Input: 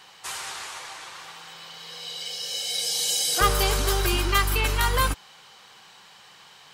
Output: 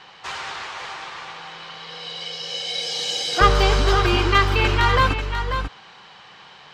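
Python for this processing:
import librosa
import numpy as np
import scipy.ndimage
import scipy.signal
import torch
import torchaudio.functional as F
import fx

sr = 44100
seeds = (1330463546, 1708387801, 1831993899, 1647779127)

p1 = fx.air_absorb(x, sr, metres=180.0)
p2 = p1 + fx.echo_single(p1, sr, ms=540, db=-8.0, dry=0)
y = p2 * librosa.db_to_amplitude(7.0)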